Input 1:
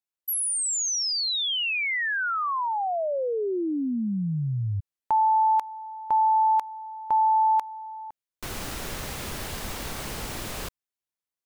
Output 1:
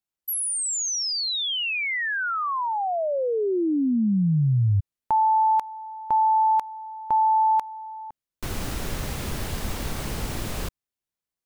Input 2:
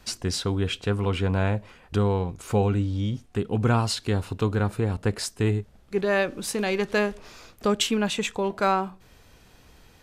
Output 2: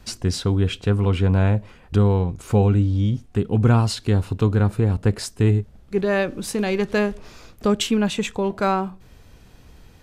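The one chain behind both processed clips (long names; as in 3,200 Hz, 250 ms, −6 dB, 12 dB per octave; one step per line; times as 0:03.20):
low-shelf EQ 330 Hz +8 dB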